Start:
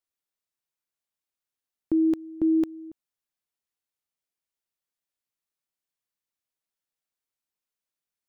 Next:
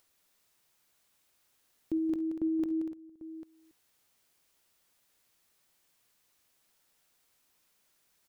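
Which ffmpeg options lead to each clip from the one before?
-filter_complex "[0:a]acompressor=mode=upward:threshold=0.00631:ratio=2.5,asplit=2[s0][s1];[s1]aecho=0:1:51|67|178|240|795:0.133|0.119|0.335|0.282|0.178[s2];[s0][s2]amix=inputs=2:normalize=0,volume=0.398"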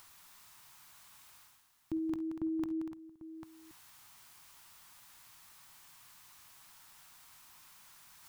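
-af "equalizer=f=125:t=o:w=1:g=4,equalizer=f=250:t=o:w=1:g=-3,equalizer=f=500:t=o:w=1:g=-12,equalizer=f=1000:t=o:w=1:g=9,areverse,acompressor=mode=upward:threshold=0.00447:ratio=2.5,areverse,volume=1.12"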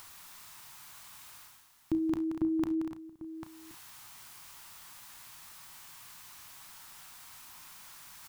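-filter_complex "[0:a]asplit=2[s0][s1];[s1]adelay=33,volume=0.282[s2];[s0][s2]amix=inputs=2:normalize=0,volume=2.24"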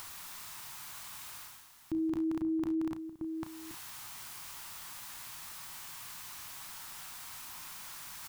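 -af "alimiter=level_in=2.82:limit=0.0631:level=0:latency=1:release=42,volume=0.355,volume=1.78"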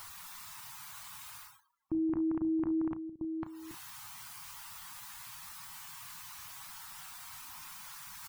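-af "afftdn=nr=34:nf=-54,volume=1.12"

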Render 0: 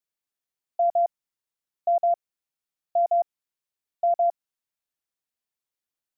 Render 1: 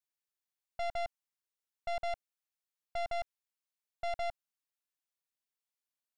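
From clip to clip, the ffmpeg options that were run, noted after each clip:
-af "lowshelf=f=490:g=-8.5,aeval=exprs='(tanh(50.1*val(0)+0.75)-tanh(0.75))/50.1':c=same"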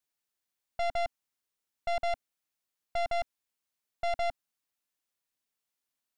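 -af "equalizer=f=260:t=o:w=0.45:g=3.5,volume=1.78"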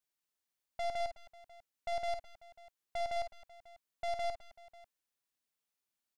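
-af "asoftclip=type=tanh:threshold=0.0422,aecho=1:1:51|57|209|214|543:0.376|0.112|0.119|0.141|0.1,volume=0.668"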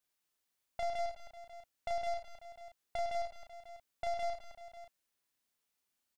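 -filter_complex "[0:a]acompressor=threshold=0.0112:ratio=6,asplit=2[s0][s1];[s1]adelay=35,volume=0.631[s2];[s0][s2]amix=inputs=2:normalize=0,volume=1.41"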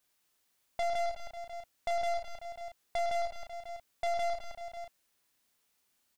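-filter_complex "[0:a]asplit=2[s0][s1];[s1]alimiter=level_in=4.47:limit=0.0631:level=0:latency=1,volume=0.224,volume=1[s2];[s0][s2]amix=inputs=2:normalize=0,asoftclip=type=hard:threshold=0.0335,volume=1.33"

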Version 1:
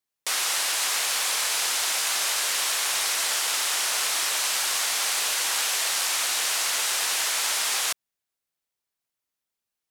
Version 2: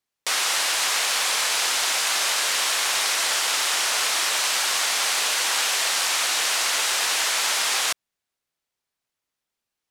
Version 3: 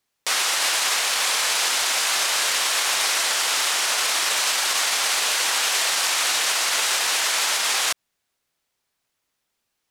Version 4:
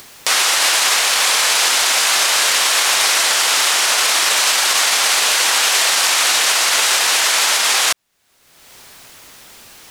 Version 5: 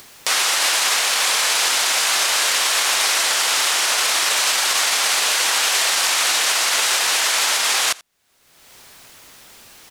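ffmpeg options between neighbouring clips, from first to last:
-af "highshelf=f=9400:g=-9,volume=1.68"
-af "alimiter=limit=0.1:level=0:latency=1:release=68,volume=2.37"
-af "acompressor=mode=upward:threshold=0.0562:ratio=2.5,volume=2.24"
-af "aecho=1:1:84:0.0708,volume=0.668"

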